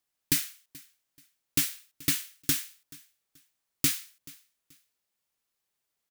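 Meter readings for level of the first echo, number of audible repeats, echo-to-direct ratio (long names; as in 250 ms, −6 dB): −22.5 dB, 2, −22.0 dB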